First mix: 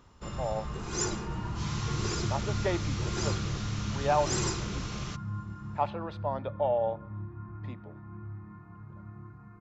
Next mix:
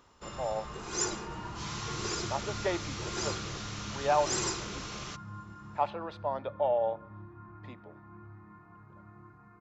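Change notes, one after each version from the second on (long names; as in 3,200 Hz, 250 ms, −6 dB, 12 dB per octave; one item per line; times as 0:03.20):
master: add bass and treble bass −10 dB, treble +1 dB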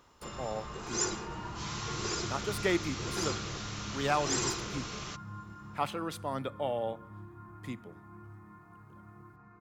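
speech: remove loudspeaker in its box 470–3,800 Hz, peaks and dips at 600 Hz +8 dB, 880 Hz +7 dB, 1,300 Hz −7 dB, 2,100 Hz −7 dB, 3,100 Hz −8 dB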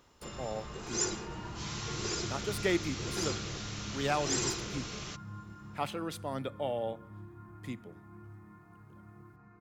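master: add parametric band 1,100 Hz −5 dB 0.88 octaves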